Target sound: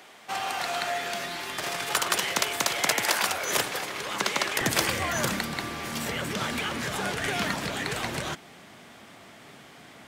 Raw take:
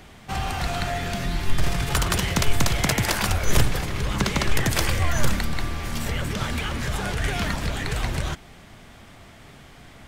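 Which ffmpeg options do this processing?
-af "asetnsamples=n=441:p=0,asendcmd='4.61 highpass f 200',highpass=450"

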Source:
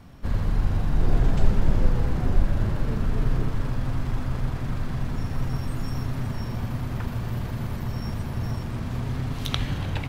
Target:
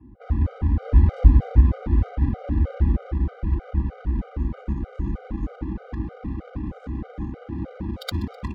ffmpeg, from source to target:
-filter_complex "[0:a]aecho=1:1:4.9:1,asetrate=52038,aresample=44100,afreqshift=38,adynamicsmooth=sensitivity=1.5:basefreq=600,asplit=4[a][b][c][d];[b]adelay=127,afreqshift=82,volume=-21dB[e];[c]adelay=254,afreqshift=164,volume=-27.7dB[f];[d]adelay=381,afreqshift=246,volume=-34.5dB[g];[a][e][f][g]amix=inputs=4:normalize=0,afftfilt=real='re*gt(sin(2*PI*3.2*pts/sr)*(1-2*mod(floor(b*sr/1024/400),2)),0)':imag='im*gt(sin(2*PI*3.2*pts/sr)*(1-2*mod(floor(b*sr/1024/400),2)),0)':win_size=1024:overlap=0.75,volume=-1dB"

